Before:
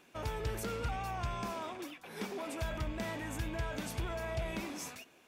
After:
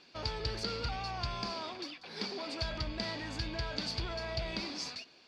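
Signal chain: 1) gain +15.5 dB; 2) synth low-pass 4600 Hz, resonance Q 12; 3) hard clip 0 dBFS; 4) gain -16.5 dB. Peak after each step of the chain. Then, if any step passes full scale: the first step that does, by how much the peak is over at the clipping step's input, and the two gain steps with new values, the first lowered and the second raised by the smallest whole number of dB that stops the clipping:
-11.5, -1.5, -1.5, -18.0 dBFS; no overload

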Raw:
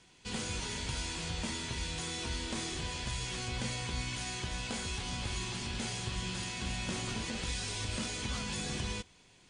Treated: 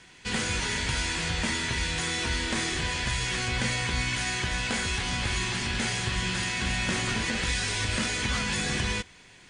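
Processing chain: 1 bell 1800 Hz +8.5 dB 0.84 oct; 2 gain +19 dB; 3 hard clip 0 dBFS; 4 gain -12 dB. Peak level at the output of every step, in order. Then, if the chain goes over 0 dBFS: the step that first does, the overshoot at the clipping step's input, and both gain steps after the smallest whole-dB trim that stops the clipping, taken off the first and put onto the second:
-22.0, -3.0, -3.0, -15.0 dBFS; no overload

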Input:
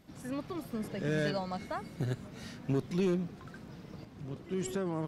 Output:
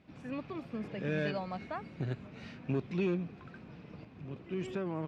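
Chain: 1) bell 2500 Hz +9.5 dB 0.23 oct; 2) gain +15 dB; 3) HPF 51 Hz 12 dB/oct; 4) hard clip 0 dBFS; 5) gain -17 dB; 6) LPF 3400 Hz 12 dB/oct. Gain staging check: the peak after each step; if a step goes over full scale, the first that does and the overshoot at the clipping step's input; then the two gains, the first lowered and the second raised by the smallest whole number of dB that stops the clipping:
-21.5, -6.5, -5.5, -5.5, -22.5, -22.5 dBFS; no overload

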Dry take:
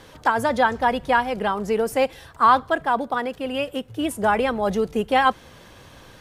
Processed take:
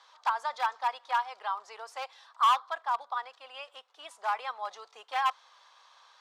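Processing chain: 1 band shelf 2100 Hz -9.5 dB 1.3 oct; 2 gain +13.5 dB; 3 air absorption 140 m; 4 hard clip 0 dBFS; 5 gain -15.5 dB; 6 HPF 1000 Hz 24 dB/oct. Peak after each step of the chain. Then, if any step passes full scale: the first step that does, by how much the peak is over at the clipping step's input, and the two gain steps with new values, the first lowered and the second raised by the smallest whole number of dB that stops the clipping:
-6.5, +7.0, +6.5, 0.0, -15.5, -15.0 dBFS; step 2, 6.5 dB; step 2 +6.5 dB, step 5 -8.5 dB

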